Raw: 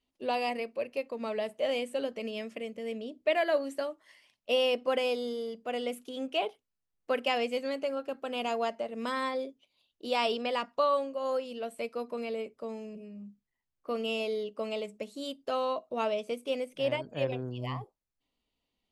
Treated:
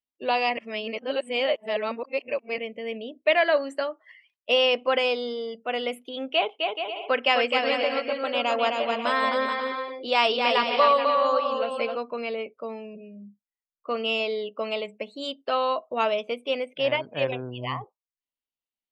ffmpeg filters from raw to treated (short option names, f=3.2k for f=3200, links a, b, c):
-filter_complex "[0:a]asettb=1/sr,asplit=3[a][b][c];[a]atrim=end=6.334[d];[b]atrim=start=6.33:end=11.97,asetpts=PTS-STARTPTS,afade=t=in:d=0.004:c=qsin,afade=t=out:st=5.636:d=0.004:c=qsin,aecho=1:1:260|429|538.8|610.3|656.7:0.631|0.398|0.251|0.158|0.1,atrim=end_sample=248724[e];[c]atrim=start=11.966[f];[d][e]acrossfade=d=0.004:c1=hsin:c2=qsin[g];[g][f]acrossfade=d=0.004:c1=qsin:c2=hsin,asplit=3[h][i][j];[h]atrim=end=0.572[k];[i]atrim=start=0.568:end=2.582,asetpts=PTS-STARTPTS,areverse[l];[j]atrim=start=2.578[m];[k][l]acrossfade=d=0.004:c1=hsin:c2=hsin[n];[n][m]acrossfade=d=0.004:c1=hsin:c2=hsin,equalizer=f=1.9k:w=0.32:g=10,afftdn=nr=24:nf=-48"